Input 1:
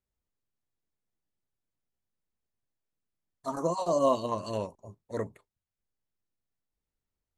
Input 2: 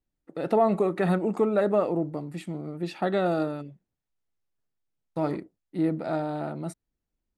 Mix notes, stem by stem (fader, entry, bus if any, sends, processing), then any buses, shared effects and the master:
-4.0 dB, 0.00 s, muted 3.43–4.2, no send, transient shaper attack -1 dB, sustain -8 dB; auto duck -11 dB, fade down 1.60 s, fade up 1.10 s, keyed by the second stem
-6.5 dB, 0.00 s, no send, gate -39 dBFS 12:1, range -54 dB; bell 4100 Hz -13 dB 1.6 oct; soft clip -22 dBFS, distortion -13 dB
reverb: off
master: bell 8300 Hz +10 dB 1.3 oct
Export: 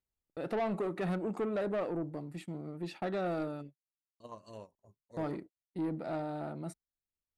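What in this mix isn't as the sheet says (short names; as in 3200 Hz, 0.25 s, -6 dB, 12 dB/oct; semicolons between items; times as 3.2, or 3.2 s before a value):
stem 2: missing bell 4100 Hz -13 dB 1.6 oct; master: missing bell 8300 Hz +10 dB 1.3 oct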